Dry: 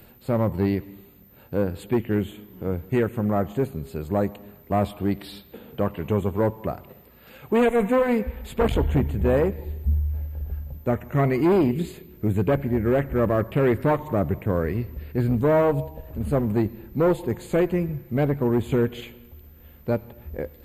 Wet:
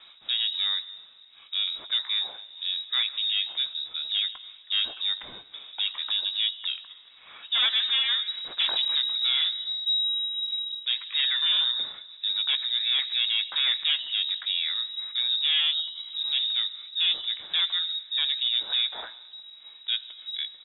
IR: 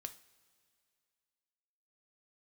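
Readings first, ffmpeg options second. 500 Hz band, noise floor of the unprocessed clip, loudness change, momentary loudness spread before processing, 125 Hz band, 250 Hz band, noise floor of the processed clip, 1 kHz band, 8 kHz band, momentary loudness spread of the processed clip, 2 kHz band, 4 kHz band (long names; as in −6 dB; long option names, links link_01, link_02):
below −30 dB, −50 dBFS, −0.5 dB, 12 LU, below −40 dB, below −40 dB, −52 dBFS, −15.5 dB, can't be measured, 10 LU, +1.0 dB, +26.0 dB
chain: -filter_complex "[0:a]aemphasis=mode=production:type=50fm,lowpass=frequency=3300:width_type=q:width=0.5098,lowpass=frequency=3300:width_type=q:width=0.6013,lowpass=frequency=3300:width_type=q:width=0.9,lowpass=frequency=3300:width_type=q:width=2.563,afreqshift=-3900,asplit=2[link_01][link_02];[link_02]adelay=17,volume=-14dB[link_03];[link_01][link_03]amix=inputs=2:normalize=0,acrossover=split=2900[link_04][link_05];[link_05]acompressor=threshold=-29dB:ratio=4:attack=1:release=60[link_06];[link_04][link_06]amix=inputs=2:normalize=0"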